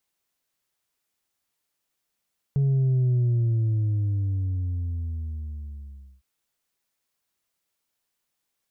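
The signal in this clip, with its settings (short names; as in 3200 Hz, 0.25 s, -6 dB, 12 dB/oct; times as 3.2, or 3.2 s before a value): sub drop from 140 Hz, over 3.66 s, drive 2.5 dB, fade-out 3.09 s, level -19 dB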